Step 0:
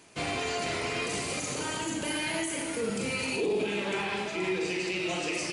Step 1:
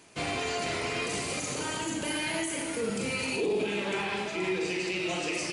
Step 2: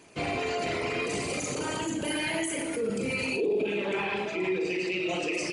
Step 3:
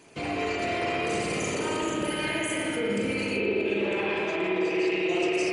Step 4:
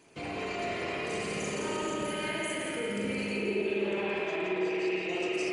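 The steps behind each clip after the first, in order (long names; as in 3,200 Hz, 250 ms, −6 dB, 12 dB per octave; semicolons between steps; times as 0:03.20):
no processing that can be heard
spectral envelope exaggerated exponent 1.5; level +1.5 dB
brickwall limiter −23.5 dBFS, peak gain reduction 4.5 dB; spring reverb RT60 3.8 s, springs 54 ms, chirp 80 ms, DRR −2.5 dB
echo with a time of its own for lows and highs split 1,500 Hz, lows 103 ms, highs 171 ms, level −6 dB; level −6 dB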